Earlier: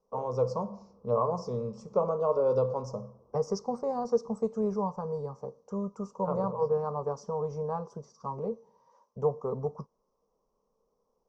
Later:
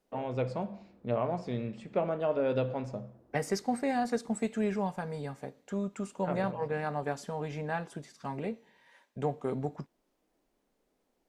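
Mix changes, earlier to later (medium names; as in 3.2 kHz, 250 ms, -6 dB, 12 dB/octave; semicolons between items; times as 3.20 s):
first voice: add tape spacing loss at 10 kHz 21 dB; master: remove FFT filter 210 Hz 0 dB, 310 Hz -14 dB, 460 Hz +8 dB, 700 Hz -5 dB, 1.1 kHz +9 dB, 1.7 kHz -26 dB, 2.5 kHz -26 dB, 3.7 kHz -23 dB, 5.7 kHz +2 dB, 9.4 kHz -29 dB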